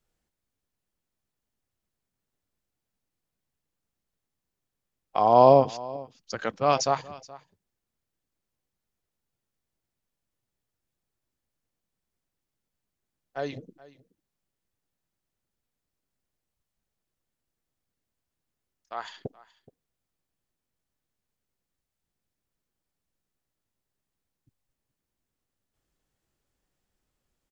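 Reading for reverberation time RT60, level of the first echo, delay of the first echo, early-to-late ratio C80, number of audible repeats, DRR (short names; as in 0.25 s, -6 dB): none, -20.5 dB, 0.424 s, none, 1, none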